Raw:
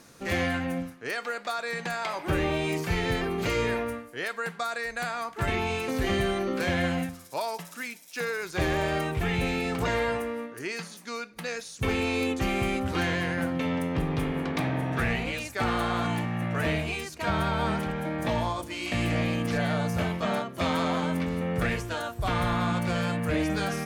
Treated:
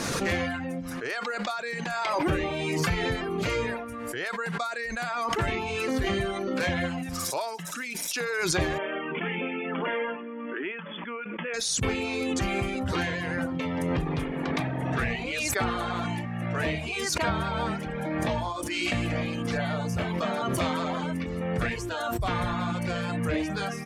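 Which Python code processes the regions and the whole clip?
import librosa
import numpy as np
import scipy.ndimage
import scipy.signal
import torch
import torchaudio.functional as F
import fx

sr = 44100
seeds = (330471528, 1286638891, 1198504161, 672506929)

y = fx.chain(x, sr, fx.brickwall_bandpass(low_hz=170.0, high_hz=3500.0),
    fx.notch(hz=740.0, q=6.7), at=(8.78, 11.54))
y = fx.dereverb_blind(y, sr, rt60_s=0.89)
y = scipy.signal.sosfilt(scipy.signal.bessel(2, 8700.0, 'lowpass', norm='mag', fs=sr, output='sos'), y)
y = fx.pre_swell(y, sr, db_per_s=20.0)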